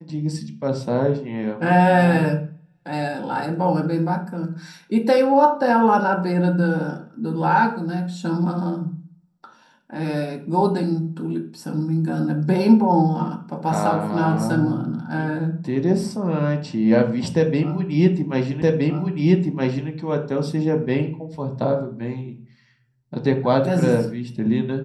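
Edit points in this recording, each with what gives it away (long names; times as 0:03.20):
0:18.62: the same again, the last 1.27 s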